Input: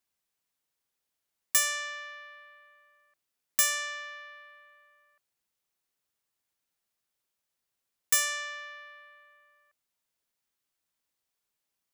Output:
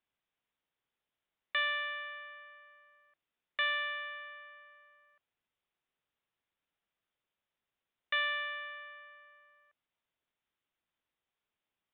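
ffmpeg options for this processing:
ffmpeg -i in.wav -af "aresample=8000,aresample=44100" out.wav

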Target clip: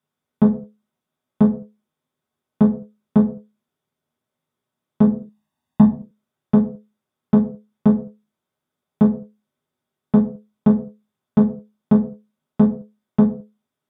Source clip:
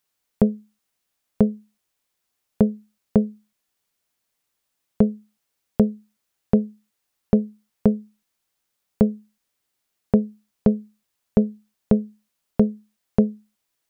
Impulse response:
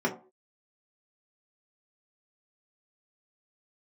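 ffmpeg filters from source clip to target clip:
-filter_complex "[0:a]volume=13.5dB,asoftclip=hard,volume=-13.5dB,asettb=1/sr,asplit=3[link_01][link_02][link_03];[link_01]atrim=end=5.074[link_04];[link_02]atrim=start=5.07:end=5.89,asetpts=PTS-STARTPTS,afade=type=in:duration=0.004:curve=qsin,afade=type=out:start_time=0.816:duration=0.004:curve=qsin,aecho=1:1:1.1:0.83,atrim=end_sample=36162[link_05];[link_03]atrim=start=5.886[link_06];[link_04][link_05]acrossfade=duration=0.004:curve1=hsin:curve2=qsin[link_07];[link_07][link_06]acrossfade=duration=0.004:curve1=qsin:curve2=hsin[link_08];[1:a]atrim=start_sample=2205,atrim=end_sample=6174,asetrate=27783,aresample=44100[link_09];[link_08][link_09]afir=irnorm=-1:irlink=0,volume=-11.5dB"

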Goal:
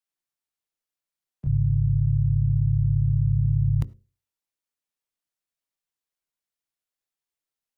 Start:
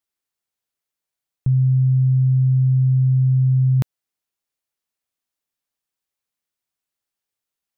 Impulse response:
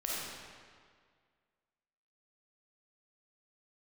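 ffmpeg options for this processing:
-filter_complex "[0:a]bandreject=frequency=60:width_type=h:width=6,bandreject=frequency=120:width_type=h:width=6,bandreject=frequency=180:width_type=h:width=6,bandreject=frequency=240:width_type=h:width=6,bandreject=frequency=300:width_type=h:width=6,bandreject=frequency=360:width_type=h:width=6,bandreject=frequency=420:width_type=h:width=6,afreqshift=-26,asplit=4[link_01][link_02][link_03][link_04];[link_02]asetrate=22050,aresample=44100,atempo=2,volume=-6dB[link_05];[link_03]asetrate=58866,aresample=44100,atempo=0.749154,volume=-2dB[link_06];[link_04]asetrate=66075,aresample=44100,atempo=0.66742,volume=-17dB[link_07];[link_01][link_05][link_06][link_07]amix=inputs=4:normalize=0,asplit=2[link_08][link_09];[1:a]atrim=start_sample=2205,atrim=end_sample=3969,adelay=22[link_10];[link_09][link_10]afir=irnorm=-1:irlink=0,volume=-24.5dB[link_11];[link_08][link_11]amix=inputs=2:normalize=0,volume=-8dB"

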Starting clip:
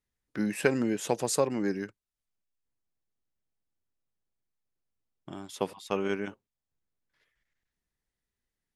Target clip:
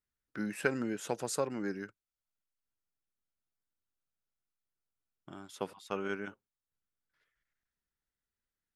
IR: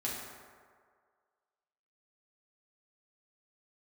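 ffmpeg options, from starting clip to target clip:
-af "equalizer=frequency=1400:width=3.9:gain=8.5,volume=-7dB"

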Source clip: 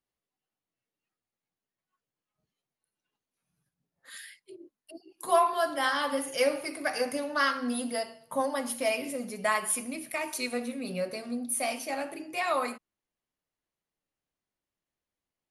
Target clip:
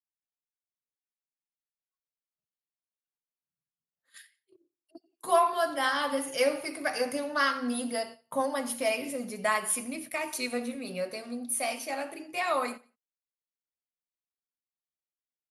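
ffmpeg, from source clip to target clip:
ffmpeg -i in.wav -filter_complex "[0:a]agate=range=-21dB:threshold=-43dB:ratio=16:detection=peak,asettb=1/sr,asplit=3[link_01][link_02][link_03];[link_01]atrim=end=10.754[link_04];[link_02]atrim=start=10.75:end=12.33,asetpts=PTS-STARTPTS,afade=type=in:duration=0.004:curve=qsin,afade=type=out:start_time=1.576:duration=0.004:curve=qsin,lowshelf=frequency=180:gain=-9.5[link_05];[link_03]atrim=start=12.326[link_06];[link_04][link_05]acrossfade=duration=0.004:curve1=hsin:curve2=qsin[link_07];[link_07][link_06]acrossfade=duration=0.004:curve1=qsin:curve2=hsin,asplit=2[link_08][link_09];[link_09]aecho=0:1:89|178:0.0708|0.0234[link_10];[link_08][link_10]amix=inputs=2:normalize=0" out.wav

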